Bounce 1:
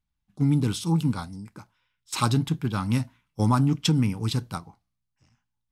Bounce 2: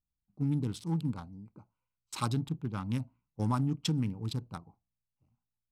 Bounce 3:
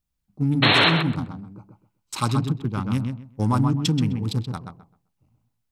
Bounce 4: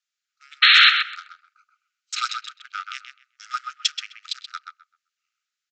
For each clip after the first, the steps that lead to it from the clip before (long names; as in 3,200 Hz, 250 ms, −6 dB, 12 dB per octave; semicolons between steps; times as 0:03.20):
adaptive Wiener filter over 25 samples; level −8.5 dB
sound drawn into the spectrogram noise, 0:00.62–0:00.90, 260–4,300 Hz −26 dBFS; feedback echo with a low-pass in the loop 129 ms, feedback 22%, low-pass 2,900 Hz, level −5 dB; level +8.5 dB
linear-phase brick-wall high-pass 1,200 Hz; downsampling to 16,000 Hz; level +6 dB